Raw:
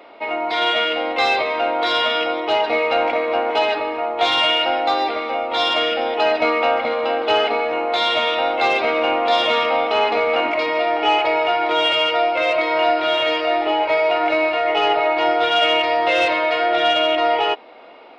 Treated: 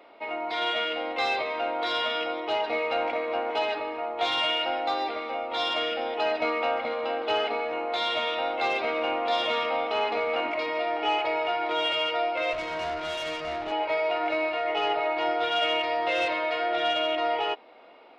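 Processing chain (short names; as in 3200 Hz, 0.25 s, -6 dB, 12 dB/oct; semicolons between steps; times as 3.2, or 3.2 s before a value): 12.53–13.72 tube stage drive 18 dB, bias 0.55; gain -9 dB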